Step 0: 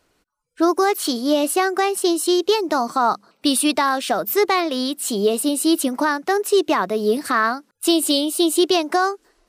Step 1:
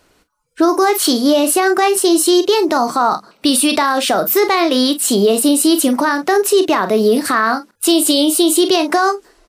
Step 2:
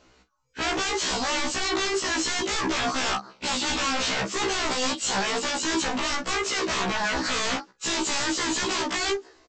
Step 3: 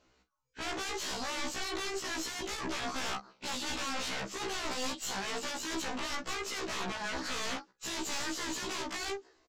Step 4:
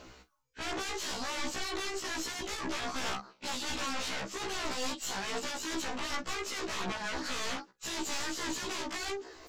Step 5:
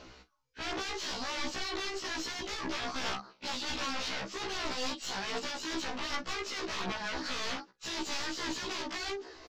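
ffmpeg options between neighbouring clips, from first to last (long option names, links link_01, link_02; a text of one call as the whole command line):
ffmpeg -i in.wav -af "aecho=1:1:32|45:0.224|0.188,alimiter=level_in=13dB:limit=-1dB:release=50:level=0:latency=1,volume=-4dB" out.wav
ffmpeg -i in.wav -af "aresample=16000,aeval=exprs='0.112*(abs(mod(val(0)/0.112+3,4)-2)-1)':channel_layout=same,aresample=44100,afftfilt=real='re*1.73*eq(mod(b,3),0)':imag='im*1.73*eq(mod(b,3),0)':win_size=2048:overlap=0.75" out.wav
ffmpeg -i in.wav -af "aeval=exprs='(tanh(12.6*val(0)+0.75)-tanh(0.75))/12.6':channel_layout=same,volume=-6.5dB" out.wav
ffmpeg -i in.wav -af "areverse,acompressor=mode=upward:threshold=-38dB:ratio=2.5,areverse,aphaser=in_gain=1:out_gain=1:delay=3.6:decay=0.22:speed=1.3:type=sinusoidal" out.wav
ffmpeg -i in.wav -af "aresample=32000,aresample=44100,aeval=exprs='0.0708*(cos(1*acos(clip(val(0)/0.0708,-1,1)))-cos(1*PI/2))+0.00355*(cos(4*acos(clip(val(0)/0.0708,-1,1)))-cos(4*PI/2))+0.00501*(cos(6*acos(clip(val(0)/0.0708,-1,1)))-cos(6*PI/2))':channel_layout=same,highshelf=frequency=6700:width_type=q:width=1.5:gain=-8" out.wav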